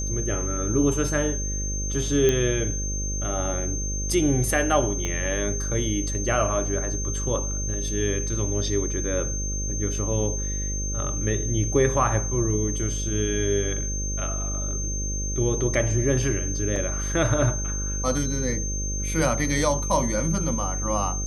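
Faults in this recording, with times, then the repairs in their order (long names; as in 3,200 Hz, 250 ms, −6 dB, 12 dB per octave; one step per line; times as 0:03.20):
mains buzz 50 Hz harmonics 12 −29 dBFS
whistle 6,300 Hz −30 dBFS
0:02.29: click −9 dBFS
0:05.05: click −15 dBFS
0:16.76: drop-out 2.4 ms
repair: click removal
notch filter 6,300 Hz, Q 30
hum removal 50 Hz, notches 12
repair the gap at 0:16.76, 2.4 ms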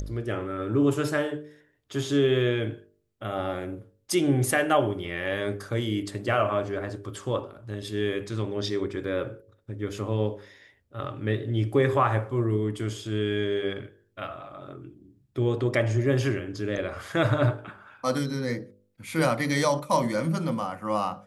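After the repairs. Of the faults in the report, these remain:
0:05.05: click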